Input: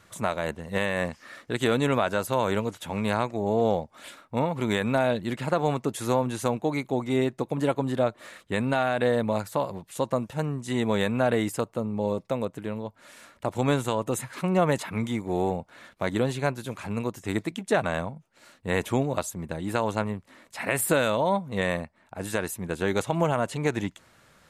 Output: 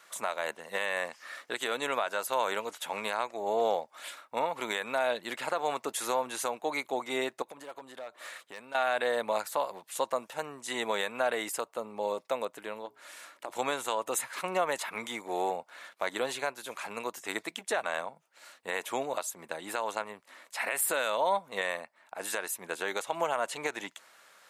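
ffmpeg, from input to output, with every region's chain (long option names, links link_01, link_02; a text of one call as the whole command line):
ffmpeg -i in.wav -filter_complex "[0:a]asettb=1/sr,asplit=3[link_01][link_02][link_03];[link_01]atrim=end=7.424[link_04];[link_02]atrim=start=7.42:end=8.75,asetpts=PTS-STARTPTS,afade=type=in:duration=0.004:curve=qsin,afade=type=out:start_time=1.326:duration=0.004:curve=qsin,volume=18dB,asoftclip=hard,volume=-18dB,acompressor=threshold=-35dB:ratio=16:attack=3.2:release=140:knee=1:detection=peak[link_05];[link_03]atrim=start=8.746[link_06];[link_04][link_05]acrossfade=duration=0.004:curve1=hsin:curve2=qsin[link_07];[link_07][link_06]acrossfade=duration=0.004:curve1=qsin:curve2=hsin,asettb=1/sr,asplit=3[link_08][link_09][link_10];[link_08]atrim=end=12.854[link_11];[link_09]atrim=start=12.85:end=13.5,asetpts=PTS-STARTPTS,afade=type=in:duration=0.004:curve=qsin,afade=type=out:start_time=0.646:duration=0.004:curve=qsin,equalizer=frequency=320:width_type=o:width=0.26:gain=10,bandreject=frequency=60:width_type=h:width=6,bandreject=frequency=120:width_type=h:width=6,bandreject=frequency=180:width_type=h:width=6,bandreject=frequency=240:width_type=h:width=6,bandreject=frequency=300:width_type=h:width=6,bandreject=frequency=360:width_type=h:width=6,bandreject=frequency=420:width_type=h:width=6,acompressor=threshold=-34dB:ratio=3:attack=3.2:release=140:knee=1:detection=peak[link_12];[link_10]atrim=start=13.496[link_13];[link_11][link_12]acrossfade=duration=0.004:curve1=hsin:curve2=qsin[link_14];[link_14][link_13]acrossfade=duration=0.004:curve1=qsin:curve2=hsin,highpass=640,highshelf=frequency=12000:gain=3.5,alimiter=limit=-18.5dB:level=0:latency=1:release=277,volume=1.5dB" out.wav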